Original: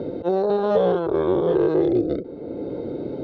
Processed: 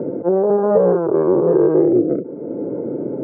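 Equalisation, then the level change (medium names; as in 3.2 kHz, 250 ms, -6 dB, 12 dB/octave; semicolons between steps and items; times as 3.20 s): Gaussian low-pass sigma 6 samples; high-pass 130 Hz 24 dB/octave; band-stop 740 Hz, Q 12; +6.0 dB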